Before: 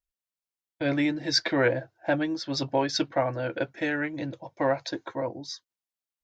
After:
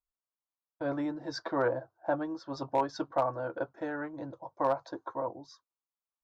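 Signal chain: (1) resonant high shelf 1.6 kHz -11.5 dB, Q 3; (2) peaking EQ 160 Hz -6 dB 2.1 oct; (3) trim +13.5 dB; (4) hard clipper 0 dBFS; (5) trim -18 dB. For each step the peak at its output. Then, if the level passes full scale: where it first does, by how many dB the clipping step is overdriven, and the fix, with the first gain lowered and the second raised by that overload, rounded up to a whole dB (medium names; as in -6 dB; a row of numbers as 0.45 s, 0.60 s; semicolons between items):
-9.0 dBFS, -10.5 dBFS, +3.0 dBFS, 0.0 dBFS, -18.0 dBFS; step 3, 3.0 dB; step 3 +10.5 dB, step 5 -15 dB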